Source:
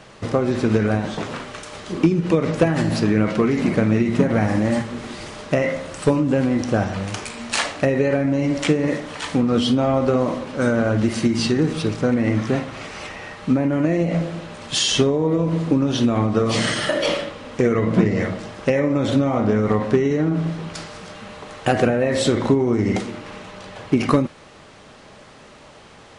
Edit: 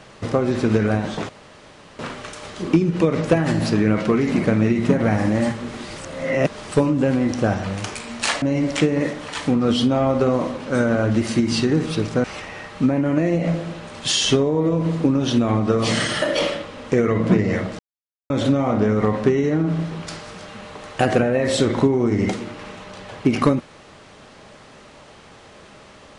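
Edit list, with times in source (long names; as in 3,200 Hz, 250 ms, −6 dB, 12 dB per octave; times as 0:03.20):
0:01.29: splice in room tone 0.70 s
0:05.28–0:06.01: reverse
0:07.72–0:08.29: remove
0:12.11–0:12.91: remove
0:18.46–0:18.97: silence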